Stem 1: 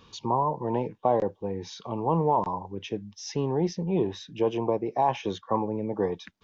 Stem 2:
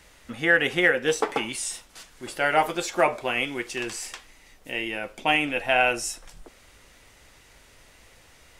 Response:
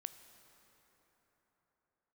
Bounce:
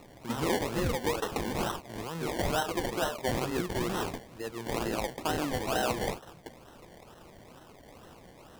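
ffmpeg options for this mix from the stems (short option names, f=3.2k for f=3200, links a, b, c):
-filter_complex "[0:a]alimiter=limit=-19.5dB:level=0:latency=1:release=80,lowpass=1.5k,volume=-9.5dB[a];[1:a]highpass=f=92:w=0.5412,highpass=f=92:w=1.3066,acompressor=threshold=-32dB:ratio=2,volume=3dB[b];[a][b]amix=inputs=2:normalize=0,acrusher=samples=27:mix=1:aa=0.000001:lfo=1:lforange=16.2:lforate=2.2,alimiter=limit=-21dB:level=0:latency=1:release=41"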